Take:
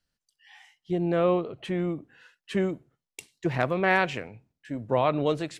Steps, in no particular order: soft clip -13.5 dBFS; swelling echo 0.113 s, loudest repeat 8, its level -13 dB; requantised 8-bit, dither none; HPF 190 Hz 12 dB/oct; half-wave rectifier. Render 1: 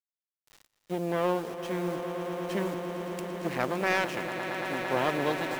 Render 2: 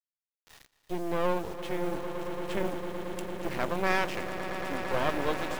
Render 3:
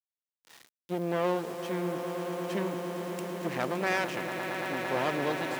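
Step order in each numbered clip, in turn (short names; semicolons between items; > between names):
half-wave rectifier > HPF > requantised > swelling echo > soft clip; soft clip > HPF > requantised > swelling echo > half-wave rectifier; half-wave rectifier > swelling echo > requantised > soft clip > HPF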